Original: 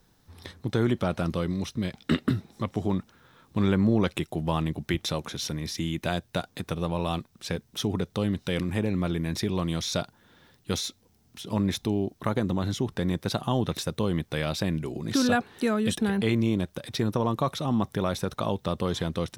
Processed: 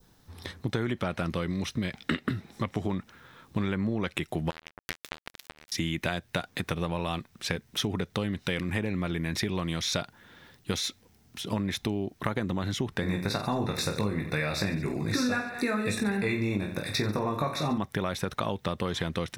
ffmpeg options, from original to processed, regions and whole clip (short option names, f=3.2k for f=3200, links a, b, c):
-filter_complex "[0:a]asettb=1/sr,asplit=3[a][b][c];[a]atrim=end=4.504[d];[b]atrim=start=4.5:end=5.72,asetpts=PTS-STARTPTS,afade=t=in:d=0.004:c=qsin,afade=t=out:st=1.216:d=0.004:c=qsin,equalizer=f=88:t=o:w=1.8:g=-6,acompressor=threshold=-30dB:ratio=20:attack=3.2:release=140:knee=1:detection=peak,acrusher=bits=3:mix=0:aa=0.5[e];[c]atrim=start=5.716[f];[d][e]acrossfade=d=0.004:c1=hsin:c2=qsin[g];[g][f]acrossfade=d=0.004:c1=qsin:c2=hsin,asettb=1/sr,asplit=3[h][i][j];[h]atrim=end=13.014[k];[i]atrim=start=13.01:end=17.78,asetpts=PTS-STARTPTS,afade=t=in:d=0.004:c=qsin,afade=t=out:st=4.766:d=0.004:c=qsin,asuperstop=centerf=3100:order=20:qfactor=4.4,aecho=1:1:20|48|87.2|142.1|218.9:0.631|0.398|0.251|0.158|0.1,atrim=end_sample=210357[l];[j]atrim=start=17.776[m];[k][l]acrossfade=d=0.004:c1=hsin:c2=qsin[n];[n][m]acrossfade=d=0.004:c1=qsin:c2=hsin,adynamicequalizer=threshold=0.00355:dfrequency=2000:dqfactor=1.2:tfrequency=2000:tqfactor=1.2:attack=5:release=100:ratio=0.375:range=4:mode=boostabove:tftype=bell,acompressor=threshold=-28dB:ratio=6,volume=2.5dB"